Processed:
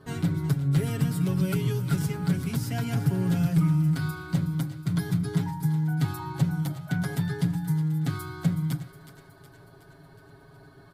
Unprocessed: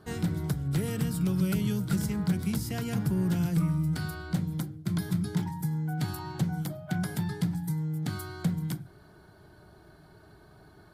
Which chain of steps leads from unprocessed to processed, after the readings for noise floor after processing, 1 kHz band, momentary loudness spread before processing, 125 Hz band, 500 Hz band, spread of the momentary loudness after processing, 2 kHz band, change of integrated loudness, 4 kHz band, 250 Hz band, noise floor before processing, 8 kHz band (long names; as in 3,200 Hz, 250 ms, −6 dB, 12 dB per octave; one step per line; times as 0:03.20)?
−52 dBFS, +3.0 dB, 6 LU, +4.5 dB, +2.0 dB, 6 LU, +3.0 dB, +3.5 dB, +1.0 dB, +2.0 dB, −56 dBFS, 0.0 dB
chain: bass and treble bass +1 dB, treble −3 dB
comb filter 7.3 ms, depth 87%
on a send: feedback echo with a high-pass in the loop 368 ms, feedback 60%, high-pass 640 Hz, level −12.5 dB